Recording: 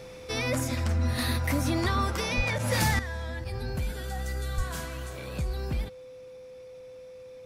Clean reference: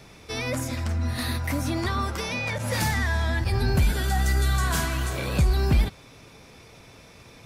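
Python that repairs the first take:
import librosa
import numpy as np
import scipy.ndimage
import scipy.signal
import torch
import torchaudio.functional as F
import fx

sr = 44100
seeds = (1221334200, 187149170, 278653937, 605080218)

y = fx.notch(x, sr, hz=510.0, q=30.0)
y = fx.highpass(y, sr, hz=140.0, slope=24, at=(2.36, 2.48), fade=0.02)
y = fx.highpass(y, sr, hz=140.0, slope=24, at=(4.56, 4.68), fade=0.02)
y = fx.gain(y, sr, db=fx.steps((0.0, 0.0), (2.99, 10.5)))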